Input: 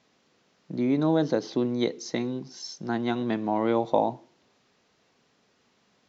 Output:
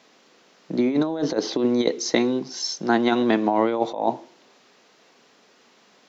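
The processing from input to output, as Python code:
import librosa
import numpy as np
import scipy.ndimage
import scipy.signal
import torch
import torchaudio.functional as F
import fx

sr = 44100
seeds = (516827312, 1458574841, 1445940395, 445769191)

y = scipy.signal.sosfilt(scipy.signal.butter(2, 260.0, 'highpass', fs=sr, output='sos'), x)
y = fx.over_compress(y, sr, threshold_db=-28.0, ratio=-0.5)
y = y * 10.0 ** (8.5 / 20.0)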